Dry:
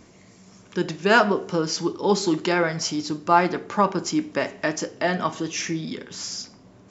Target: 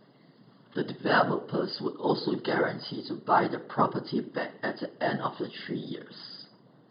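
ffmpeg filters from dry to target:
-af "afftfilt=real='hypot(re,im)*cos(2*PI*random(0))':imag='hypot(re,im)*sin(2*PI*random(1))':win_size=512:overlap=0.75,afftfilt=real='re*between(b*sr/4096,110,5000)':imag='im*between(b*sr/4096,110,5000)':win_size=4096:overlap=0.75,asuperstop=centerf=2400:order=4:qfactor=3"

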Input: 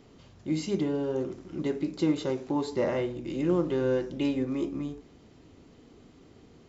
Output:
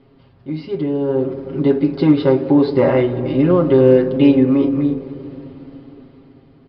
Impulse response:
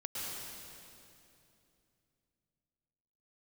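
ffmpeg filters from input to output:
-filter_complex "[0:a]aresample=11025,aresample=44100,aemphasis=mode=reproduction:type=75fm,aecho=1:1:7.4:0.79,asoftclip=type=hard:threshold=-13.5dB,dynaudnorm=f=230:g=11:m=11.5dB,asplit=2[a][b];[1:a]atrim=start_sample=2205,lowpass=1.6k,adelay=59[c];[b][c]afir=irnorm=-1:irlink=0,volume=-13.5dB[d];[a][d]amix=inputs=2:normalize=0,volume=1dB"

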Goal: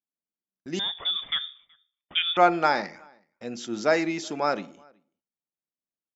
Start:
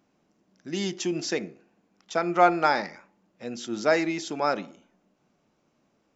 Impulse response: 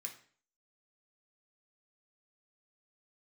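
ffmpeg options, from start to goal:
-filter_complex "[0:a]agate=range=-36dB:threshold=-53dB:ratio=16:detection=peak,asettb=1/sr,asplit=3[a][b][c];[a]atrim=end=0.794[d];[b]atrim=start=0.79:end=2.37,asetpts=PTS-STARTPTS,afade=t=in:d=0.004:c=qsin,afade=t=out:st=1.576:d=0.004:c=qsin,lowpass=f=3.2k:t=q:w=0.5098,lowpass=f=3.2k:t=q:w=0.6013,lowpass=f=3.2k:t=q:w=0.9,lowpass=f=3.2k:t=q:w=2.563,afreqshift=-3800[e];[c]atrim=start=2.366[f];[d][e]acrossfade=d=0.004:c1=hsin:c2=qsin[g];[g][f]acrossfade=d=0.004:c1=qsin:c2=hsin,asplit=2[h][i];[i]adelay=373.2,volume=-29dB,highshelf=f=4k:g=-8.4[j];[h][j]amix=inputs=2:normalize=0"

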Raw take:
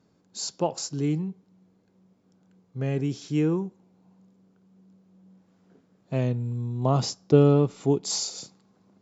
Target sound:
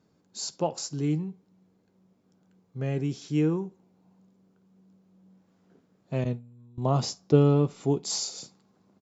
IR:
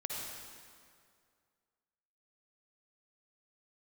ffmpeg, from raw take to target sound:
-filter_complex "[0:a]asettb=1/sr,asplit=3[a][b][c];[a]atrim=end=6.244[d];[b]atrim=start=6.24:end=6.78,asetpts=PTS-STARTPTS,afade=t=in:d=0.004:c=qsin,afade=t=out:st=0.536:d=0.004:c=qsin,agate=range=-19dB:threshold=-26dB:ratio=16:detection=peak[e];[c]atrim=start=6.776[f];[d][e]acrossfade=d=0.004:c1=hsin:c2=qsin[g];[g][f]acrossfade=d=0.004:c1=qsin:c2=hsin,asplit=2[h][i];[i]adelay=13,volume=-14dB[j];[h][j]amix=inputs=2:normalize=0,asplit=2[k][l];[1:a]atrim=start_sample=2205,atrim=end_sample=3969,asetrate=52920,aresample=44100[m];[l][m]afir=irnorm=-1:irlink=0,volume=-14.5dB[n];[k][n]amix=inputs=2:normalize=0,volume=-3dB"

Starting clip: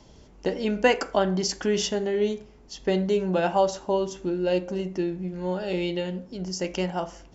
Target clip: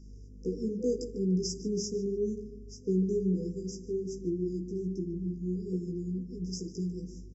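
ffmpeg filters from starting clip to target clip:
-filter_complex "[0:a]aeval=exprs='val(0)+0.01*(sin(2*PI*50*n/s)+sin(2*PI*2*50*n/s)/2+sin(2*PI*3*50*n/s)/3+sin(2*PI*4*50*n/s)/4+sin(2*PI*5*50*n/s)/5)':c=same,flanger=delay=15.5:depth=2.3:speed=2.4,afftfilt=real='re*(1-between(b*sr/4096,500,4800))':imag='im*(1-between(b*sr/4096,500,4800))':win_size=4096:overlap=0.75,aresample=32000,aresample=44100,adynamicequalizer=threshold=0.00794:dfrequency=190:dqfactor=3.4:tfrequency=190:tqfactor=3.4:attack=5:release=100:ratio=0.375:range=2:mode=boostabove:tftype=bell,asplit=2[a][b];[b]adelay=148,lowpass=f=2.3k:p=1,volume=-11dB,asplit=2[c][d];[d]adelay=148,lowpass=f=2.3k:p=1,volume=0.42,asplit=2[e][f];[f]adelay=148,lowpass=f=2.3k:p=1,volume=0.42,asplit=2[g][h];[h]adelay=148,lowpass=f=2.3k:p=1,volume=0.42[i];[c][e][g][i]amix=inputs=4:normalize=0[j];[a][j]amix=inputs=2:normalize=0,volume=-4dB"

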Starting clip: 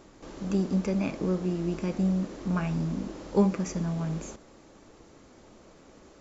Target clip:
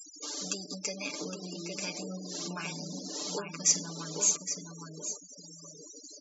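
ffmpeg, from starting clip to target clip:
-filter_complex "[0:a]acompressor=threshold=-32dB:ratio=12,highpass=f=170:w=0.5412,highpass=f=170:w=1.3066,equalizer=f=4.9k:w=0.67:g=11,aecho=1:1:6.8:0.73,asplit=2[a][b];[b]adelay=814,lowpass=f=2.9k:p=1,volume=-3.5dB,asplit=2[c][d];[d]adelay=814,lowpass=f=2.9k:p=1,volume=0.31,asplit=2[e][f];[f]adelay=814,lowpass=f=2.9k:p=1,volume=0.31,asplit=2[g][h];[h]adelay=814,lowpass=f=2.9k:p=1,volume=0.31[i];[c][e][g][i]amix=inputs=4:normalize=0[j];[a][j]amix=inputs=2:normalize=0,afftdn=nr=15:nf=-55,aemphasis=mode=production:type=riaa,afftfilt=real='re*gte(hypot(re,im),0.0126)':imag='im*gte(hypot(re,im),0.0126)':win_size=1024:overlap=0.75,acompressor=mode=upward:threshold=-42dB:ratio=2.5"

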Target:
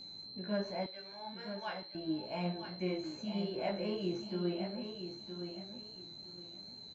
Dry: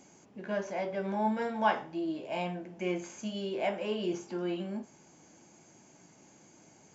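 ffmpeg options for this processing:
-filter_complex "[0:a]aemphasis=mode=reproduction:type=bsi,aeval=exprs='val(0)+0.00891*sin(2*PI*4100*n/s)':c=same,flanger=delay=16:depth=4:speed=2.5,asettb=1/sr,asplit=3[a][b][c];[a]atrim=end=0.864[d];[b]atrim=start=0.86:end=1.95,asetpts=PTS-STARTPTS,afade=t=in:d=0.004:c=qsin,afade=t=out:st=1.086:d=0.004:c=qsin,bandpass=f=4k:t=q:w=0.65:csg=0[e];[c]atrim=start=1.946[f];[d][e]acrossfade=d=0.004:c1=hsin:c2=qsin[g];[g][f]acrossfade=d=0.004:c1=qsin:c2=hsin,aecho=1:1:966|1932|2898:0.376|0.0902|0.0216,volume=-3dB"

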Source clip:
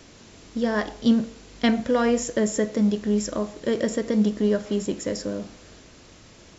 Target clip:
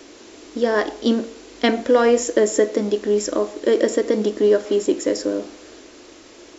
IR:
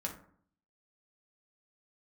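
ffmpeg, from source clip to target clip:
-af "lowshelf=f=230:t=q:w=3:g=-11,volume=4.5dB"

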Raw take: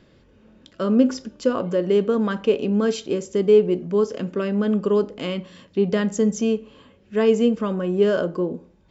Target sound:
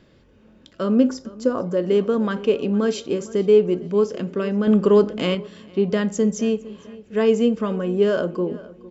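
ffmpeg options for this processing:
-filter_complex "[0:a]asettb=1/sr,asplit=3[a][b][c];[a]atrim=end=1.094[d];[b]atrim=start=1.09:end=1.77,asetpts=PTS-STARTPTS,afade=t=in:d=0.004:c=qsin,afade=t=out:st=0.676:d=0.004:c=qsin,equalizer=f=2.8k:w=1.3:g=-11[e];[c]atrim=start=1.766[f];[d][e]acrossfade=d=0.004:c1=hsin:c2=qsin[g];[g][f]acrossfade=d=0.004:c1=qsin:c2=hsin,asplit=2[h][i];[i]adelay=457,lowpass=f=3.6k:p=1,volume=-19dB,asplit=2[j][k];[k]adelay=457,lowpass=f=3.6k:p=1,volume=0.45,asplit=2[l][m];[m]adelay=457,lowpass=f=3.6k:p=1,volume=0.45,asplit=2[n][o];[o]adelay=457,lowpass=f=3.6k:p=1,volume=0.45[p];[h][j][l][n][p]amix=inputs=5:normalize=0,asettb=1/sr,asplit=3[q][r][s];[q]atrim=end=4.674[t];[r]atrim=start=4.67:end=5.35,asetpts=PTS-STARTPTS,afade=t=in:d=0.004:c=qsin,afade=t=out:st=0.676:d=0.004:c=qsin,acontrast=33[u];[s]atrim=start=5.346[v];[t][u]acrossfade=d=0.004:c1=hsin:c2=qsin[w];[w][v]acrossfade=d=0.004:c1=qsin:c2=hsin"

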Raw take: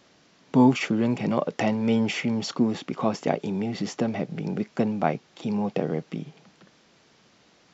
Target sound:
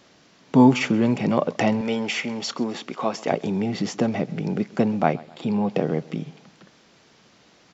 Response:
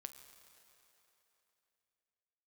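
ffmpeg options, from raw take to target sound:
-filter_complex "[0:a]asettb=1/sr,asplit=3[a][b][c];[a]atrim=end=1.814[d];[b]atrim=start=1.81:end=3.32,asetpts=PTS-STARTPTS,afade=t=in:d=0.004:c=qsin,afade=t=out:st=1.506:d=0.004:c=qsin,highpass=f=510:p=1[e];[c]atrim=start=3.316[f];[d][e]acrossfade=d=0.004:c1=hsin:c2=qsin[g];[g][f]acrossfade=d=0.004:c1=qsin:c2=hsin,asettb=1/sr,asplit=3[h][i][j];[h]atrim=end=5.134[k];[i]atrim=start=5.13:end=5.7,asetpts=PTS-STARTPTS,afade=t=in:d=0.004:c=qsin,afade=t=out:st=0.566:d=0.004:c=qsin,equalizer=f=6k:t=o:w=0.29:g=-11.5[l];[j]atrim=start=5.696[m];[k][l]acrossfade=d=0.004:c1=hsin:c2=qsin[n];[n][m]acrossfade=d=0.004:c1=qsin:c2=hsin,aecho=1:1:131|262|393:0.0794|0.0357|0.0161,volume=3.5dB"

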